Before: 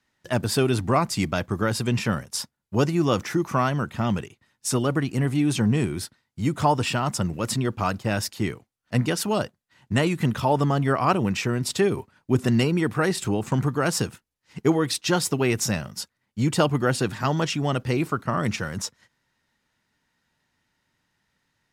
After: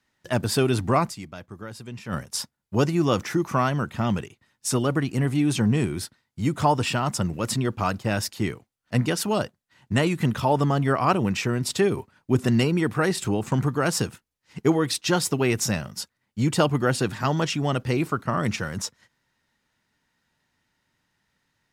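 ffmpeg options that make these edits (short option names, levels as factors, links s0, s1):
-filter_complex "[0:a]asplit=3[s0][s1][s2];[s0]atrim=end=1.37,asetpts=PTS-STARTPTS,afade=t=out:st=1.09:d=0.28:c=exp:silence=0.199526[s3];[s1]atrim=start=1.37:end=1.86,asetpts=PTS-STARTPTS,volume=0.2[s4];[s2]atrim=start=1.86,asetpts=PTS-STARTPTS,afade=t=in:d=0.28:c=exp:silence=0.199526[s5];[s3][s4][s5]concat=n=3:v=0:a=1"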